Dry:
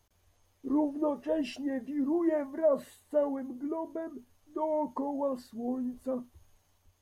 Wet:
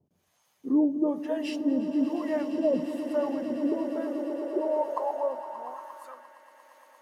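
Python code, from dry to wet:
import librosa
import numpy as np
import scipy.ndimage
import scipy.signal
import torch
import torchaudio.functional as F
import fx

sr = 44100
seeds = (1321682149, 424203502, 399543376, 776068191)

y = fx.harmonic_tremolo(x, sr, hz=1.1, depth_pct=100, crossover_hz=600.0)
y = fx.echo_swell(y, sr, ms=116, loudest=8, wet_db=-15.0)
y = fx.filter_sweep_highpass(y, sr, from_hz=170.0, to_hz=1800.0, start_s=3.56, end_s=6.43, q=2.3)
y = y * 10.0 ** (5.0 / 20.0)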